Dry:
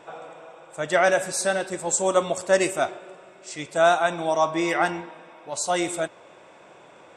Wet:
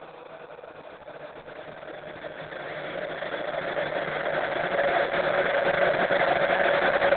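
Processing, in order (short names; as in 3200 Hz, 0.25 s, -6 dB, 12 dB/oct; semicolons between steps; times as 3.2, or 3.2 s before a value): gate with hold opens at -43 dBFS; on a send: delay with a stepping band-pass 0.381 s, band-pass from 230 Hz, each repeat 1.4 oct, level -8.5 dB; on the sum: Paulstretch 12×, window 1.00 s, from 0.4; Opus 6 kbps 48000 Hz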